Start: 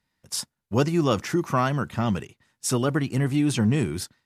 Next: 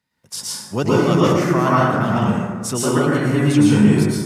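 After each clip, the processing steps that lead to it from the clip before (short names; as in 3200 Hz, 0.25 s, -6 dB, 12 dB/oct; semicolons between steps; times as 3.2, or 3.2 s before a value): HPF 95 Hz; plate-style reverb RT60 1.6 s, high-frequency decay 0.4×, pre-delay 0.1 s, DRR -7.5 dB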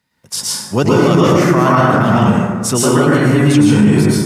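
maximiser +8.5 dB; gain -1 dB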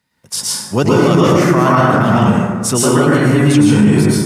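bell 9300 Hz +2.5 dB 0.28 oct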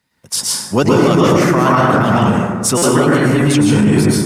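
harmonic-percussive split percussive +6 dB; in parallel at -10 dB: soft clip -10.5 dBFS, distortion -10 dB; on the sum: stuck buffer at 2.77, samples 256, times 8; gain -4.5 dB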